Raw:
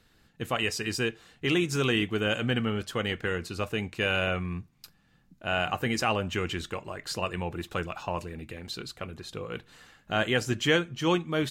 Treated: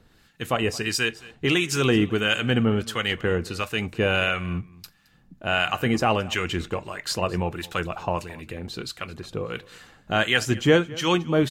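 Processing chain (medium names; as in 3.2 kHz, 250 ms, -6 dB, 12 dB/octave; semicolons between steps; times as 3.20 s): harmonic tremolo 1.5 Hz, depth 70%, crossover 1.1 kHz; on a send: delay 218 ms -21 dB; on the sum: trim +8.5 dB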